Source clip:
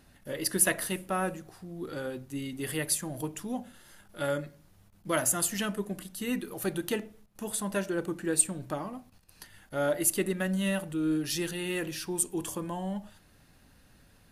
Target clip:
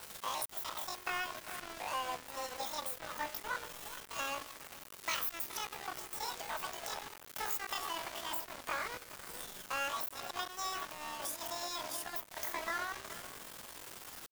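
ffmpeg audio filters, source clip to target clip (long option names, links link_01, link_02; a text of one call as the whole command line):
ffmpeg -i in.wav -filter_complex "[0:a]aeval=exprs='val(0)+0.5*0.0158*sgn(val(0))':channel_layout=same,afftfilt=real='re*lt(hypot(re,im),0.251)':imag='im*lt(hypot(re,im),0.251)':win_size=1024:overlap=0.75,highpass=480,equalizer=frequency=1500:width=0.84:gain=-4,acompressor=threshold=-35dB:ratio=8,asetrate=85689,aresample=44100,atempo=0.514651,asplit=2[link_01][link_02];[link_02]adelay=422,lowpass=frequency=1700:poles=1,volume=-7dB,asplit=2[link_03][link_04];[link_04]adelay=422,lowpass=frequency=1700:poles=1,volume=0.16,asplit=2[link_05][link_06];[link_06]adelay=422,lowpass=frequency=1700:poles=1,volume=0.16[link_07];[link_03][link_05][link_07]amix=inputs=3:normalize=0[link_08];[link_01][link_08]amix=inputs=2:normalize=0,aeval=exprs='val(0)*gte(abs(val(0)),0.00891)':channel_layout=same,adynamicequalizer=threshold=0.00126:dfrequency=2300:dqfactor=0.7:tfrequency=2300:tqfactor=0.7:attack=5:release=100:ratio=0.375:range=3:mode=cutabove:tftype=highshelf,volume=5dB" out.wav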